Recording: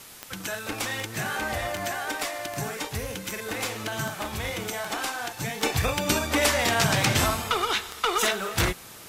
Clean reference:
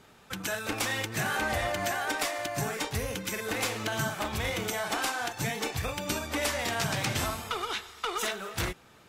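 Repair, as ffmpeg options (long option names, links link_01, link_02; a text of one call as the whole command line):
ffmpeg -i in.wav -af "adeclick=threshold=4,afwtdn=0.0056,asetnsamples=nb_out_samples=441:pad=0,asendcmd='5.63 volume volume -7.5dB',volume=0dB" out.wav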